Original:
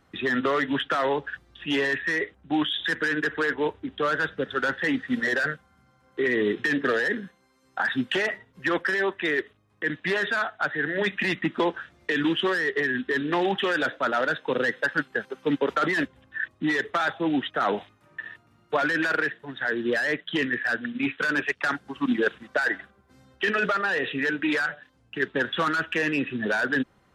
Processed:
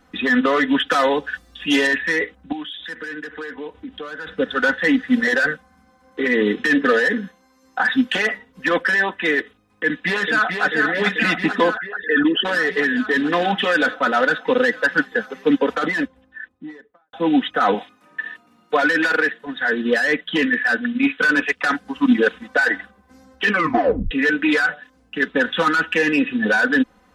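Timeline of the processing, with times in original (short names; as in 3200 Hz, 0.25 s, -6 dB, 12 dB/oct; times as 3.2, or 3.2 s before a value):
0.87–1.87 tone controls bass 0 dB, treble +9 dB
2.52–4.27 compressor 3:1, threshold -40 dBFS
9.83–10.64 echo throw 0.44 s, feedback 80%, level -5 dB
11.77–12.45 formant sharpening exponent 2
15.37–17.13 studio fade out
17.74–19.47 HPF 170 Hz
23.49 tape stop 0.62 s
whole clip: comb 4 ms, depth 83%; gain +4.5 dB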